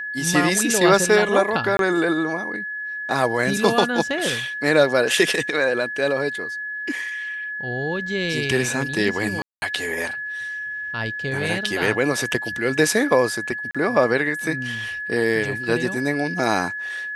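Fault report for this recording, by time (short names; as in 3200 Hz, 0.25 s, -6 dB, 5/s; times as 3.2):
tone 1700 Hz -27 dBFS
1.77–1.79 gap 22 ms
9.42–9.62 gap 0.2 s
13.71–13.75 gap 36 ms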